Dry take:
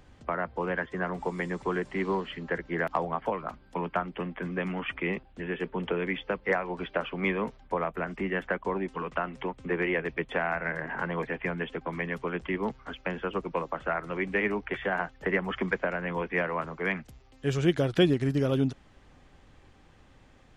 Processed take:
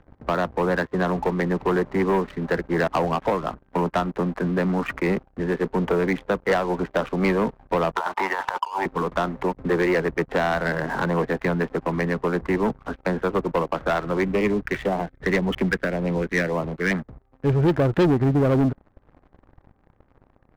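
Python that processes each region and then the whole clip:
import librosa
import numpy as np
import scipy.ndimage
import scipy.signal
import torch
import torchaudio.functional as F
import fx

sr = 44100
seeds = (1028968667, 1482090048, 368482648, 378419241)

y = fx.chain(x, sr, fx.highpass_res(hz=910.0, q=8.2),
    fx.over_compress(threshold_db=-34.0, ratio=-1.0), at=(7.96, 8.86))
y = fx.chain(y, sr, fx.phaser_stages(stages=4, low_hz=750.0, high_hz=1600.0, hz=1.8, feedback_pct=15),
    fx.peak_eq(hz=3800.0, db=15.0, octaves=0.69), at=(14.24, 16.91))
y = fx.wiener(y, sr, points=15)
y = scipy.signal.sosfilt(scipy.signal.butter(2, 1700.0, 'lowpass', fs=sr, output='sos'), y)
y = fx.leveller(y, sr, passes=3)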